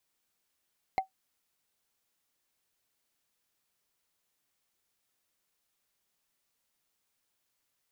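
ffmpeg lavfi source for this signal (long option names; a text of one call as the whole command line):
ffmpeg -f lavfi -i "aevalsrc='0.1*pow(10,-3*t/0.12)*sin(2*PI*764*t)+0.0376*pow(10,-3*t/0.036)*sin(2*PI*2106.3*t)+0.0141*pow(10,-3*t/0.016)*sin(2*PI*4128.7*t)+0.00531*pow(10,-3*t/0.009)*sin(2*PI*6824.8*t)+0.002*pow(10,-3*t/0.005)*sin(2*PI*10191.8*t)':duration=0.45:sample_rate=44100" out.wav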